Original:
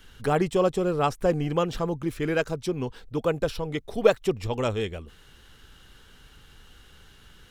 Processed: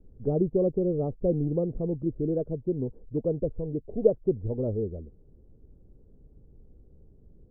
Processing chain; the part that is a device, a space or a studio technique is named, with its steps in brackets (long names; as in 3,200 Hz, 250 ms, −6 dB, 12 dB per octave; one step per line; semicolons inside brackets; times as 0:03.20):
under water (low-pass filter 450 Hz 24 dB per octave; parametric band 610 Hz +5 dB 0.6 octaves)